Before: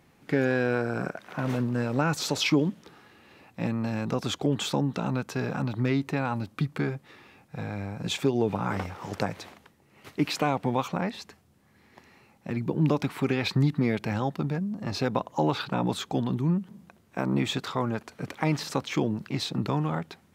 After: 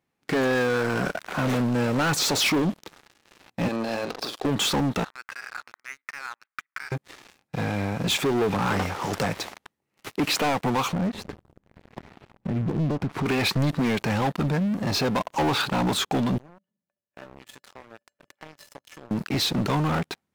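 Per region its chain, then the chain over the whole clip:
0:03.68–0:04.45: loudspeaker in its box 480–5,100 Hz, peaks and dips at 940 Hz −4 dB, 1,400 Hz −6 dB, 2,000 Hz −10 dB, 3,000 Hz −5 dB, 4,700 Hz +4 dB + compressor whose output falls as the input rises −40 dBFS, ratio −0.5 + double-tracking delay 44 ms −8 dB
0:05.04–0:06.92: downward compressor 5 to 1, threshold −31 dBFS + flat-topped band-pass 1,700 Hz, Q 1.7
0:10.93–0:13.26: spectral tilt −4.5 dB per octave + downward compressor 2.5 to 1, threshold −35 dBFS
0:16.38–0:19.11: notch filter 3,900 Hz, Q 8.2 + tuned comb filter 580 Hz, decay 0.15 s, harmonics odd, mix 90% + downward compressor 2.5 to 1, threshold −49 dBFS
whole clip: low-shelf EQ 180 Hz −6.5 dB; leveller curve on the samples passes 5; level −7 dB

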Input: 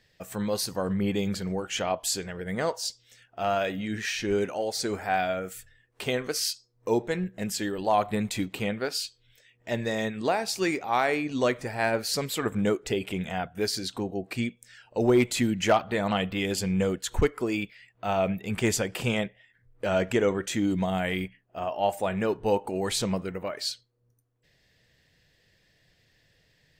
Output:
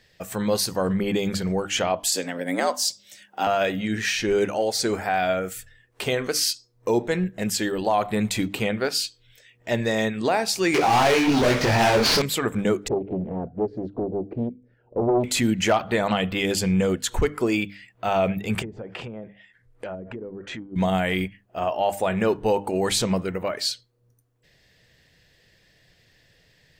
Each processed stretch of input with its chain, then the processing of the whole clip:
0:02.12–0:03.47: frequency shifter +82 Hz + high-shelf EQ 5,500 Hz +7 dB
0:10.74–0:12.22: variable-slope delta modulation 32 kbit/s + leveller curve on the samples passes 5 + micro pitch shift up and down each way 36 cents
0:12.88–0:15.24: low-pass with resonance 420 Hz, resonance Q 2.1 + downward compressor 2 to 1, threshold −31 dBFS + highs frequency-modulated by the lows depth 0.65 ms
0:18.62–0:20.76: treble cut that deepens with the level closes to 320 Hz, closed at −20.5 dBFS + downward compressor 4 to 1, threshold −36 dBFS + low-shelf EQ 320 Hz −5 dB
whole clip: brickwall limiter −18 dBFS; mains-hum notches 50/100/150/200/250/300 Hz; level +6 dB

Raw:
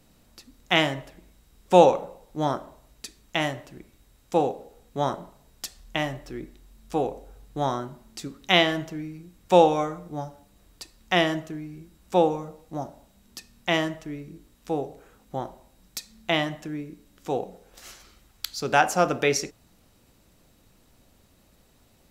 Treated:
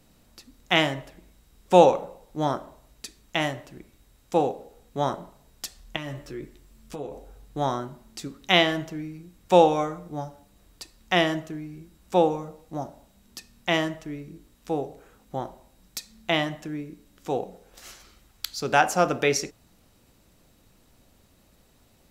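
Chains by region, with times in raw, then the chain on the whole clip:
0:05.96–0:07.15: downward compressor 4 to 1, threshold −32 dBFS + notch filter 770 Hz, Q 7.4 + double-tracking delay 14 ms −6 dB
whole clip: no processing

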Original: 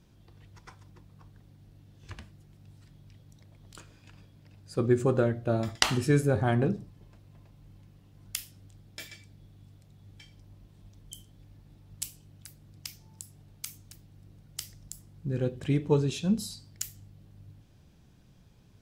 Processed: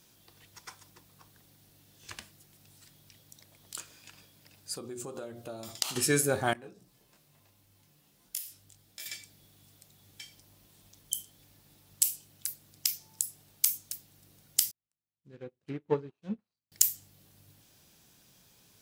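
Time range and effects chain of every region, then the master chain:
0:04.76–0:05.96: parametric band 1,800 Hz −10.5 dB 0.56 octaves + mains-hum notches 60/120/180/240/300/360/420/480/540 Hz + downward compressor 10 to 1, threshold −34 dBFS
0:06.53–0:09.06: downward compressor 2 to 1, threshold −50 dBFS + micro pitch shift up and down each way 16 cents
0:14.71–0:16.72: running median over 25 samples + treble cut that deepens with the level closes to 1,900 Hz, closed at −23.5 dBFS + expander for the loud parts 2.5 to 1, over −46 dBFS
whole clip: RIAA equalisation recording; boost into a limiter +2.5 dB; level −1 dB

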